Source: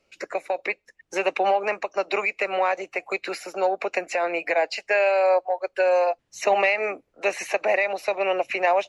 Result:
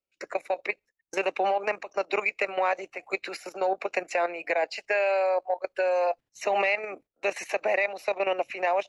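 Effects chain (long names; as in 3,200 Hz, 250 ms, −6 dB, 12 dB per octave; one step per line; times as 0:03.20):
noise gate −43 dBFS, range −18 dB
output level in coarse steps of 12 dB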